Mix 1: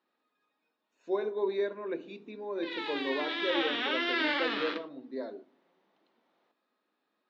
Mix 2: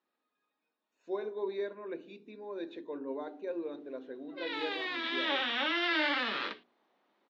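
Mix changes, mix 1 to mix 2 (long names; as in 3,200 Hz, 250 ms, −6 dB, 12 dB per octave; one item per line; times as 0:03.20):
speech −5.0 dB
background: entry +1.75 s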